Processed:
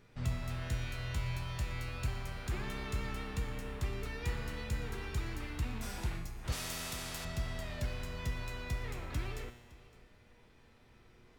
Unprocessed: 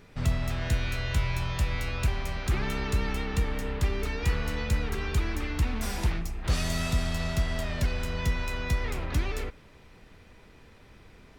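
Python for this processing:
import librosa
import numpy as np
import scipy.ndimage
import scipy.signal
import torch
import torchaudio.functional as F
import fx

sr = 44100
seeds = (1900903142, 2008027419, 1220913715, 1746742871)

y = fx.comb_fb(x, sr, f0_hz=120.0, decay_s=1.2, harmonics='all', damping=0.0, mix_pct=80)
y = y + 10.0 ** (-21.0 / 20.0) * np.pad(y, (int(562 * sr / 1000.0), 0))[:len(y)]
y = fx.spectral_comp(y, sr, ratio=2.0, at=(6.52, 7.25))
y = y * librosa.db_to_amplitude(3.0)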